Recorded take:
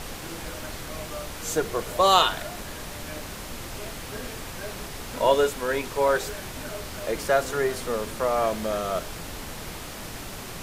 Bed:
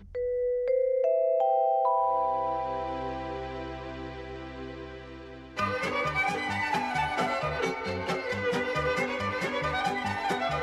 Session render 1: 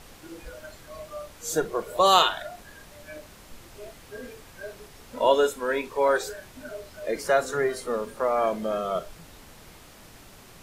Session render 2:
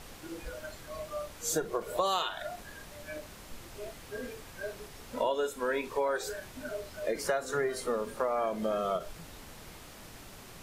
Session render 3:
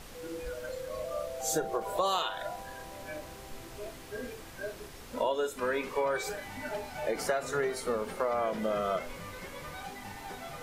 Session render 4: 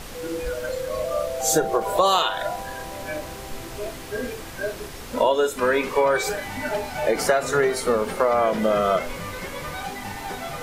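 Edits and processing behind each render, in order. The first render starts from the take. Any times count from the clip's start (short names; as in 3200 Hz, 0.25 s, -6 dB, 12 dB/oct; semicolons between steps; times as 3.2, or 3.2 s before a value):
noise print and reduce 12 dB
compressor 6:1, threshold -27 dBFS, peak gain reduction 13.5 dB; ending taper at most 270 dB/s
add bed -14.5 dB
gain +10.5 dB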